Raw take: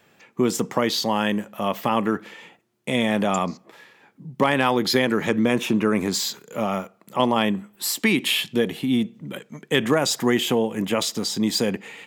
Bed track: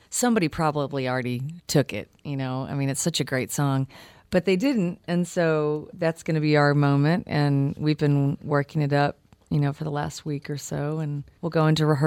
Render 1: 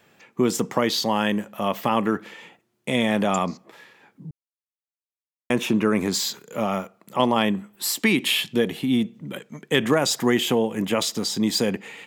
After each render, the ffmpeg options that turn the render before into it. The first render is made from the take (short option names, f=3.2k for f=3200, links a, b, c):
-filter_complex "[0:a]asplit=3[a][b][c];[a]atrim=end=4.31,asetpts=PTS-STARTPTS,afade=t=out:st=4.306:d=0.004:c=hsin[d];[b]atrim=start=4.31:end=5.5,asetpts=PTS-STARTPTS,volume=0[e];[c]atrim=start=5.5,asetpts=PTS-STARTPTS,afade=t=in:d=0.004:c=hsin[f];[d][e][f]concat=n=3:v=0:a=1"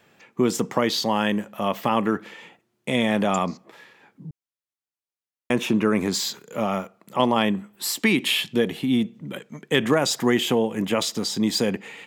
-af "highshelf=f=8.4k:g=-3.5"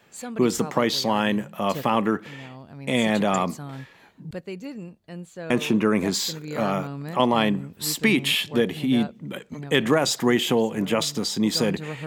-filter_complex "[1:a]volume=-13.5dB[a];[0:a][a]amix=inputs=2:normalize=0"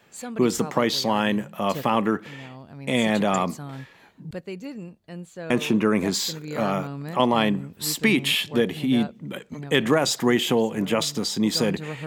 -af anull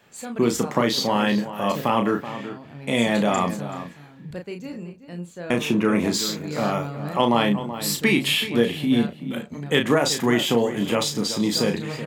-filter_complex "[0:a]asplit=2[a][b];[b]adelay=34,volume=-6dB[c];[a][c]amix=inputs=2:normalize=0,asplit=2[d][e];[e]adelay=379,volume=-12dB,highshelf=f=4k:g=-8.53[f];[d][f]amix=inputs=2:normalize=0"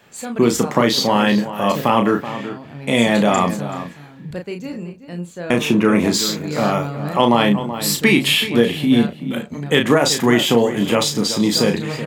-af "volume=5.5dB,alimiter=limit=-2dB:level=0:latency=1"